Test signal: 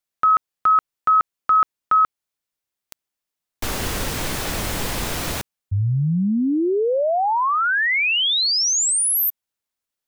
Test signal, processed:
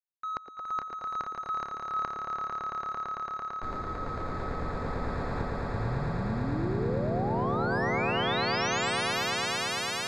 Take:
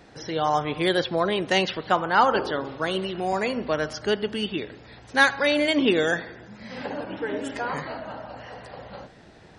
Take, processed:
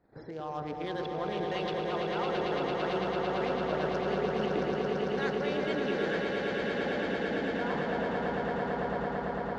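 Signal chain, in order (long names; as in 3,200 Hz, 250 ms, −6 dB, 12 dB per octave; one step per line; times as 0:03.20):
adaptive Wiener filter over 15 samples
reversed playback
downward compressor 10 to 1, threshold −31 dBFS
reversed playback
low-pass filter 5,200 Hz 12 dB per octave
echo through a band-pass that steps 114 ms, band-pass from 360 Hz, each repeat 0.7 octaves, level −2.5 dB
noise gate −50 dBFS, range −17 dB
on a send: echo that builds up and dies away 112 ms, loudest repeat 8, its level −6 dB
on the sum: level −3 dB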